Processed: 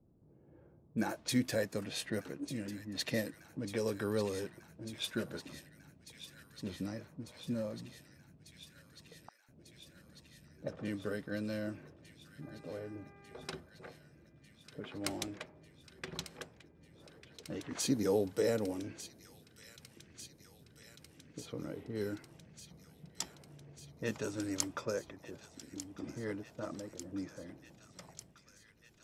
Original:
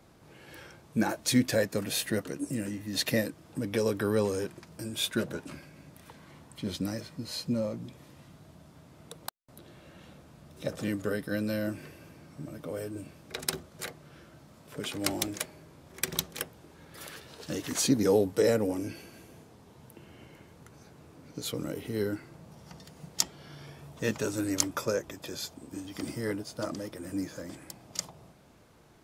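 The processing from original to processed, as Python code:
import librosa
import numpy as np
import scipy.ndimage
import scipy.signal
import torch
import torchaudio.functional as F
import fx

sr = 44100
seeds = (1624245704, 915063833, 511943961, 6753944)

y = fx.env_lowpass(x, sr, base_hz=320.0, full_db=-25.5)
y = fx.dmg_buzz(y, sr, base_hz=400.0, harmonics=6, level_db=-54.0, tilt_db=-3, odd_only=False, at=(12.41, 13.54), fade=0.02)
y = fx.echo_wet_highpass(y, sr, ms=1196, feedback_pct=78, hz=1900.0, wet_db=-11.5)
y = y * 10.0 ** (-7.0 / 20.0)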